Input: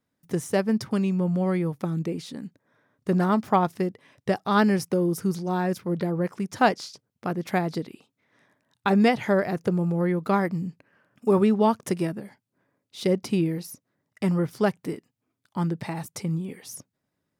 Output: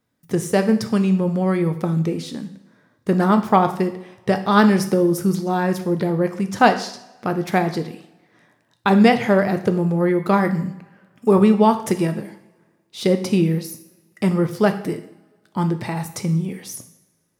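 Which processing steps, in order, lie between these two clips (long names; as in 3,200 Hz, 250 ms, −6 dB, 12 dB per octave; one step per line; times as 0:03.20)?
coupled-rooms reverb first 0.59 s, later 1.6 s, from −18 dB, DRR 7 dB
level +5.5 dB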